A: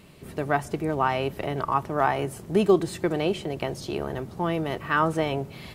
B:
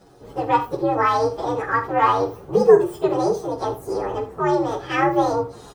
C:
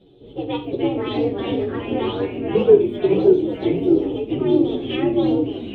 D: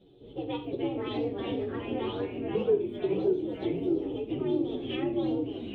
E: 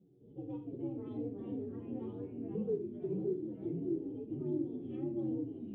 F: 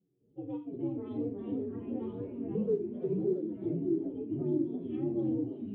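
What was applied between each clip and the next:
frequency axis rescaled in octaves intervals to 127%; high-order bell 640 Hz +9.5 dB 2.5 oct; early reflections 44 ms -12 dB, 78 ms -14 dB
FFT filter 110 Hz 0 dB, 370 Hz +5 dB, 1.1 kHz -17 dB, 1.7 kHz -15 dB, 3.5 kHz +11 dB, 5 kHz -24 dB; ever faster or slower copies 241 ms, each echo -2 st, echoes 3; trim -2 dB
compression 1.5:1, threshold -27 dBFS, peak gain reduction 7.5 dB; trim -6.5 dB
harmonic-percussive split percussive -9 dB; modulation noise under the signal 26 dB; band-pass filter 180 Hz, Q 1.8; trim +1 dB
spectral noise reduction 17 dB; modulated delay 335 ms, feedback 70%, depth 206 cents, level -17 dB; trim +5 dB

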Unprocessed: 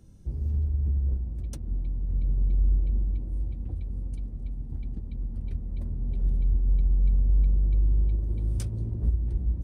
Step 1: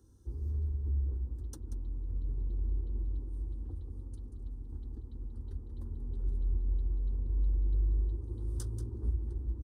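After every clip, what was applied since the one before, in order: high-pass 56 Hz; static phaser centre 630 Hz, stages 6; delay 185 ms -10.5 dB; trim -3 dB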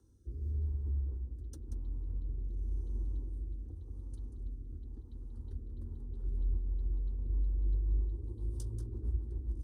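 time-frequency box 7.67–8.74 s, 1.2–2.6 kHz -8 dB; echo that smears into a reverb 1238 ms, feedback 45%, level -16 dB; rotary cabinet horn 0.9 Hz, later 7.5 Hz, at 5.63 s; trim -1 dB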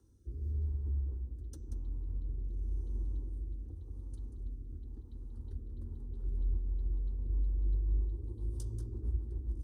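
de-hum 245.5 Hz, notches 34

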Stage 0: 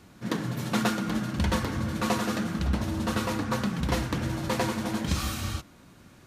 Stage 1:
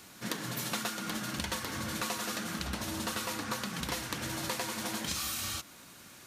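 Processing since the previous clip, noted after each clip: tilt EQ +3 dB/octave; compression 6:1, threshold -34 dBFS, peak gain reduction 12.5 dB; trim +1.5 dB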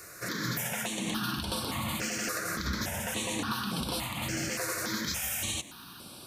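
bass shelf 140 Hz -3.5 dB; peak limiter -28 dBFS, peak gain reduction 10.5 dB; stepped phaser 3.5 Hz 870–6700 Hz; trim +8.5 dB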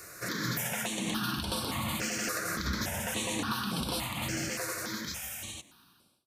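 fade out at the end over 2.05 s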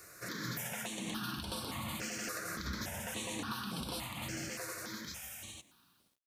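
bit crusher 11-bit; trim -7 dB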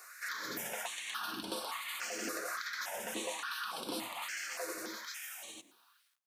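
LFO high-pass sine 1.2 Hz 290–1800 Hz

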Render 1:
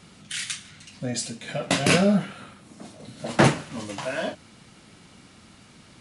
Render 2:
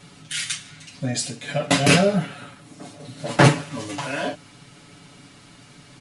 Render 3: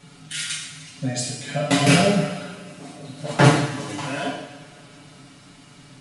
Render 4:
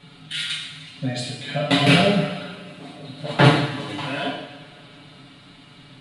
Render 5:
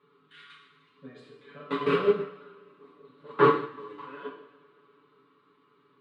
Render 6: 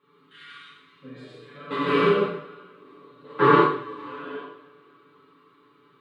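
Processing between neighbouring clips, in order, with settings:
comb 7 ms, depth 91%; trim +1 dB
two-slope reverb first 0.86 s, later 3.4 s, from -19 dB, DRR -0.5 dB; trim -3.5 dB
resonant high shelf 4.7 kHz -7 dB, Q 3
two resonant band-passes 680 Hz, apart 1.4 oct; upward expansion 1.5:1, over -42 dBFS; trim +6.5 dB
gated-style reverb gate 200 ms flat, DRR -6.5 dB; trim -1 dB

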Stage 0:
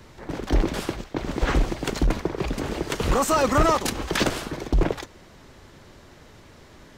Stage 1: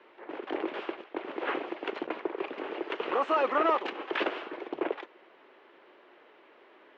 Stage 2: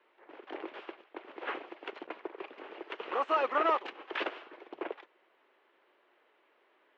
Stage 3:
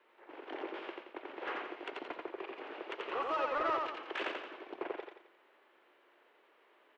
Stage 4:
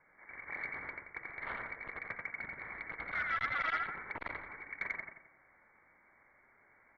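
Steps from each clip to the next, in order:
Chebyshev band-pass 350–2900 Hz, order 3; trim -4.5 dB
bass shelf 350 Hz -9 dB; upward expansion 1.5:1, over -44 dBFS
in parallel at +3 dB: compression, threshold -39 dBFS, peak gain reduction 14.5 dB; on the sum: saturation -19.5 dBFS, distortion -18 dB; feedback delay 87 ms, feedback 41%, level -3 dB; trim -7.5 dB
frequency inversion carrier 2.6 kHz; transformer saturation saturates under 1 kHz; trim +1 dB

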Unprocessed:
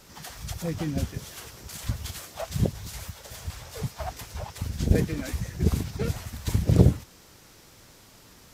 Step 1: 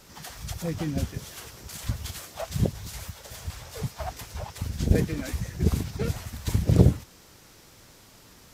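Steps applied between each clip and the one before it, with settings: no audible change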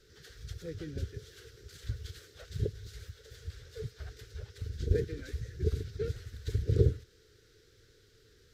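FFT filter 110 Hz 0 dB, 190 Hz -13 dB, 280 Hz -9 dB, 440 Hz +7 dB, 650 Hz -21 dB, 1 kHz -25 dB, 1.5 kHz -1 dB, 2.5 kHz -10 dB, 3.8 kHz -2 dB, 10 kHz -15 dB; trim -6 dB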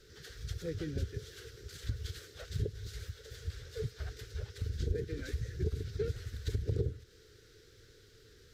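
compression 5:1, threshold -33 dBFS, peak gain reduction 13.5 dB; trim +3 dB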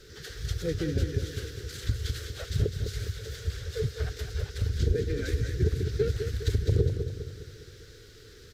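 feedback delay 204 ms, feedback 49%, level -7.5 dB; trim +8 dB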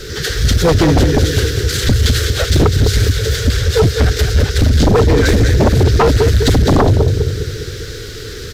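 sine folder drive 13 dB, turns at -12 dBFS; trim +6 dB

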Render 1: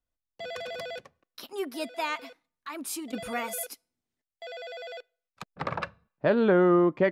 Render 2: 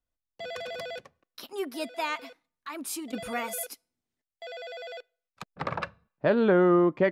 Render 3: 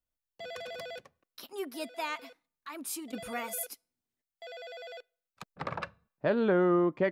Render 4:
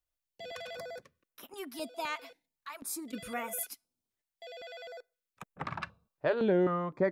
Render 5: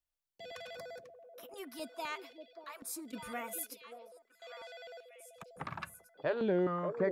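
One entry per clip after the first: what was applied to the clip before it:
no audible change
treble shelf 11 kHz +6.5 dB; trim -4.5 dB
step-sequenced notch 3.9 Hz 210–4500 Hz
repeats whose band climbs or falls 585 ms, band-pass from 470 Hz, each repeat 1.4 oct, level -5 dB; trim -4 dB

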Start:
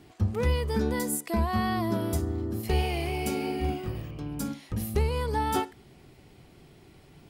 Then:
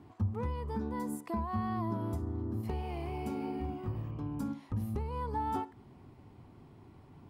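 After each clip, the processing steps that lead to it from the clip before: treble shelf 2.2 kHz -9.5 dB; compression 3:1, threshold -33 dBFS, peak gain reduction 9.5 dB; fifteen-band graphic EQ 100 Hz +10 dB, 250 Hz +8 dB, 1 kHz +12 dB; trim -6.5 dB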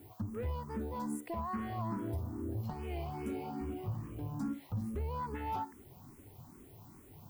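added noise violet -63 dBFS; saturation -31 dBFS, distortion -15 dB; barber-pole phaser +2.4 Hz; trim +2.5 dB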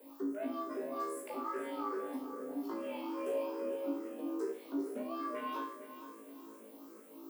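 frequency shift +180 Hz; on a send: flutter echo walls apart 3.1 m, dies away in 0.46 s; on the sum: bit-crushed delay 462 ms, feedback 35%, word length 10-bit, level -12 dB; trim -3 dB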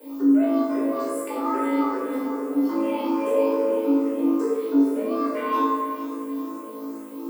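on a send: bucket-brigade echo 95 ms, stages 2048, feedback 84%, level -14 dB; on the sum: FDN reverb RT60 1 s, low-frequency decay 1.05×, high-frequency decay 0.55×, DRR -3.5 dB; trim +7.5 dB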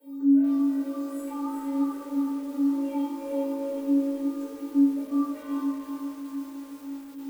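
inharmonic resonator 280 Hz, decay 0.21 s, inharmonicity 0.008; bit-crushed delay 374 ms, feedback 55%, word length 8-bit, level -5.5 dB

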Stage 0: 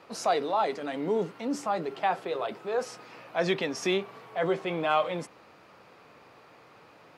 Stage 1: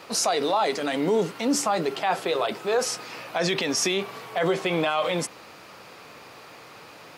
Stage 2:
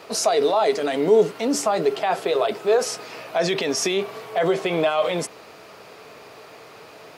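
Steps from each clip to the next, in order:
treble shelf 3.3 kHz +12 dB; peak limiter -21.5 dBFS, peak gain reduction 10.5 dB; trim +7 dB
small resonant body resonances 430/640 Hz, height 9 dB, ringing for 45 ms

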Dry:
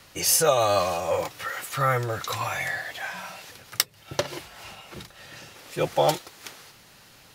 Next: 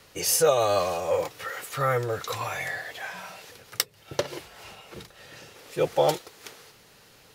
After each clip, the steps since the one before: peaking EQ 450 Hz +8 dB 0.44 oct; trim -3 dB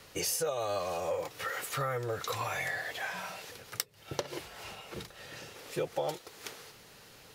compression 5:1, threshold -31 dBFS, peak gain reduction 14 dB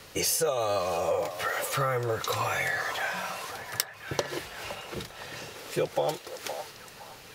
repeats whose band climbs or falls 514 ms, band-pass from 780 Hz, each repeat 0.7 oct, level -7.5 dB; trim +5.5 dB

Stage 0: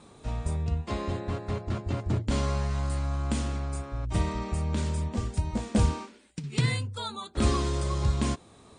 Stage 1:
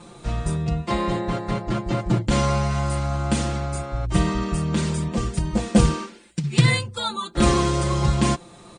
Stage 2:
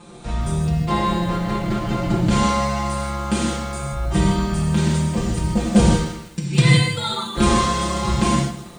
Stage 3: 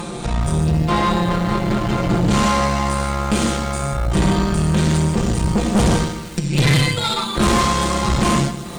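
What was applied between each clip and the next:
comb 5.8 ms, depth 98%; trim +6 dB
gated-style reverb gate 180 ms flat, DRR -1.5 dB; bit-crushed delay 160 ms, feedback 35%, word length 6-bit, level -14 dB; trim -1 dB
upward compressor, threshold -22 dBFS; valve stage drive 19 dB, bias 0.7; trim +7.5 dB

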